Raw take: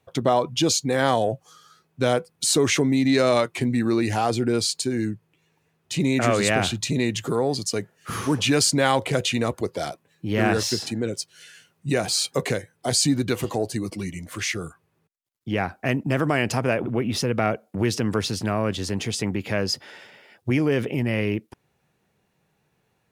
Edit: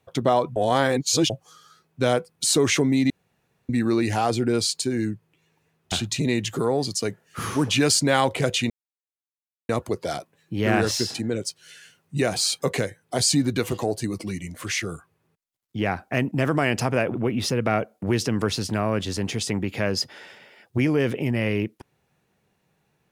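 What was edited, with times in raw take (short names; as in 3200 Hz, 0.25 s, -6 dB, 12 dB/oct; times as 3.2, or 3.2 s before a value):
0.56–1.3 reverse
3.1–3.69 room tone
5.92–6.63 cut
9.41 insert silence 0.99 s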